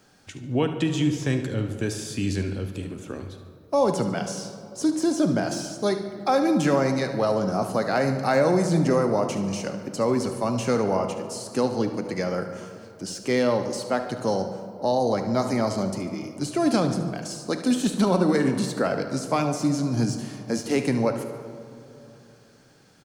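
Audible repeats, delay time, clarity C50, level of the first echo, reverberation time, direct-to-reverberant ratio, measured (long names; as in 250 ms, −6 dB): 2, 73 ms, 7.0 dB, −12.5 dB, 2.9 s, 6.0 dB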